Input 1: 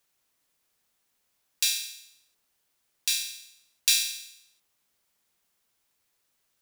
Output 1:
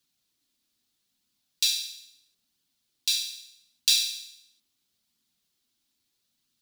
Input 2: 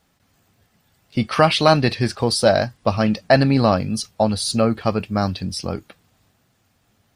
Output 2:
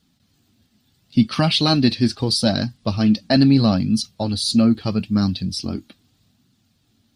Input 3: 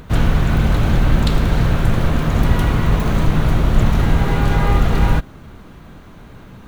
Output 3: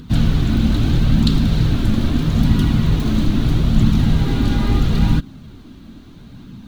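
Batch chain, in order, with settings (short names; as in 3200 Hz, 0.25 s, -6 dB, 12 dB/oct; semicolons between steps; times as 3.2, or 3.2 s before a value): graphic EQ 125/250/500/1000/2000/4000 Hz +3/+11/-6/-4/-4/+9 dB; flange 0.77 Hz, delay 0.6 ms, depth 3.1 ms, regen -47%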